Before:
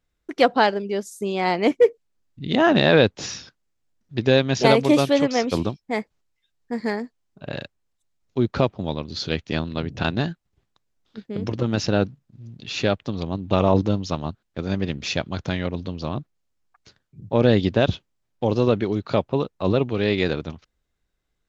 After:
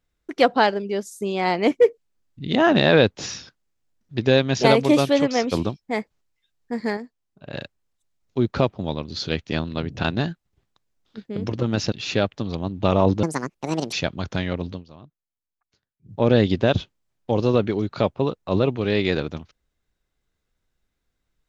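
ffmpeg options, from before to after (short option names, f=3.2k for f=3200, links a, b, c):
-filter_complex "[0:a]asplit=8[a][b][c][d][e][f][g][h];[a]atrim=end=6.972[i];[b]atrim=start=6.968:end=7.542,asetpts=PTS-STARTPTS,volume=-5.5dB[j];[c]atrim=start=7.538:end=11.922[k];[d]atrim=start=12.598:end=13.914[l];[e]atrim=start=13.91:end=15.06,asetpts=PTS-STARTPTS,asetrate=72765,aresample=44100,atrim=end_sample=30736,asetpts=PTS-STARTPTS[m];[f]atrim=start=15.056:end=15.98,asetpts=PTS-STARTPTS,afade=t=out:st=0.784:d=0.14:silence=0.133352[n];[g]atrim=start=15.98:end=17.15,asetpts=PTS-STARTPTS,volume=-17.5dB[o];[h]atrim=start=17.15,asetpts=PTS-STARTPTS,afade=t=in:d=0.14:silence=0.133352[p];[i][j]acrossfade=d=0.004:c1=hsin:c2=hsin[q];[q][k]acrossfade=d=0.004:c1=hsin:c2=hsin[r];[r][l]acrossfade=d=0.004:c1=hsin:c2=hsin[s];[s][m]acrossfade=d=0.004:c1=hsin:c2=hsin[t];[n][o][p]concat=n=3:v=0:a=1[u];[t][u]acrossfade=d=0.004:c1=hsin:c2=hsin"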